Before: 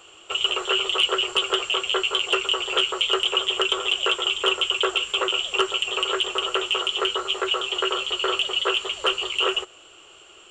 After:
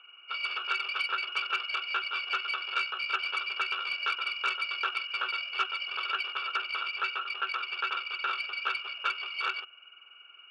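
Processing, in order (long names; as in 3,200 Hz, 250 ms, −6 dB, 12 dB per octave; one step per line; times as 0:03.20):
hearing-aid frequency compression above 2,100 Hz 4 to 1
harmonic generator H 6 −15 dB, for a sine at −6.5 dBFS
pair of resonant band-passes 2,000 Hz, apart 0.94 octaves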